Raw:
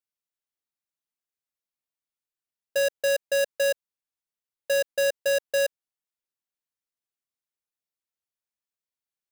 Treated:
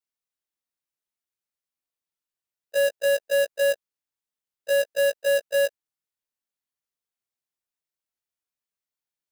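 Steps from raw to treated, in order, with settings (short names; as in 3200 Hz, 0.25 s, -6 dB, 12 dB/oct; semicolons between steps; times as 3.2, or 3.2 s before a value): short-time reversal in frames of 43 ms; gain +3 dB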